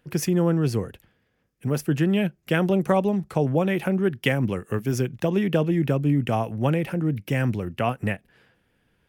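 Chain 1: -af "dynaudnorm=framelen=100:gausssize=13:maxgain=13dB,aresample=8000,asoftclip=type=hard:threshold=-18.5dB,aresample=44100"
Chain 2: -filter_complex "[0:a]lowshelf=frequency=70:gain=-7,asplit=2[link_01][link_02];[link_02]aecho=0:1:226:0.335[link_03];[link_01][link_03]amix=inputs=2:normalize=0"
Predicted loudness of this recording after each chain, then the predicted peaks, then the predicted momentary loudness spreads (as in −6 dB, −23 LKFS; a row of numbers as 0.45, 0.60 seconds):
−23.0, −24.5 LKFS; −14.0, −7.0 dBFS; 4, 7 LU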